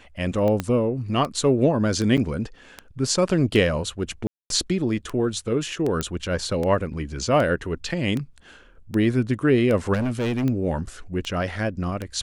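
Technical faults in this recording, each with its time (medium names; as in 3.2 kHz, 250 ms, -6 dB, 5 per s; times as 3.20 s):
tick 78 rpm -15 dBFS
0.60 s: pop -11 dBFS
2.17–2.18 s: dropout 7.5 ms
4.27–4.50 s: dropout 232 ms
6.01 s: pop -11 dBFS
9.93–10.45 s: clipped -21 dBFS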